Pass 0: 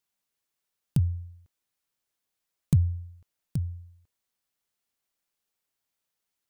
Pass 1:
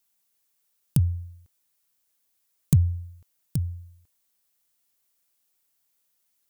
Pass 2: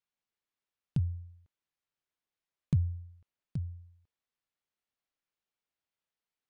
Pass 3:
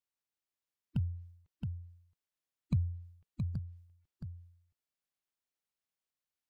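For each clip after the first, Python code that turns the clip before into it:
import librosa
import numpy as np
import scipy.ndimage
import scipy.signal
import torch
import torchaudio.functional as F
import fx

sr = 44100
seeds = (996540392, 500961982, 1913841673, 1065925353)

y1 = fx.high_shelf(x, sr, hz=6500.0, db=11.5)
y1 = y1 * librosa.db_to_amplitude(2.5)
y2 = scipy.signal.sosfilt(scipy.signal.butter(2, 3100.0, 'lowpass', fs=sr, output='sos'), y1)
y2 = y2 * librosa.db_to_amplitude(-8.5)
y3 = fx.spec_quant(y2, sr, step_db=30)
y3 = y3 + 10.0 ** (-5.5 / 20.0) * np.pad(y3, (int(671 * sr / 1000.0), 0))[:len(y3)]
y3 = y3 * librosa.db_to_amplitude(-2.5)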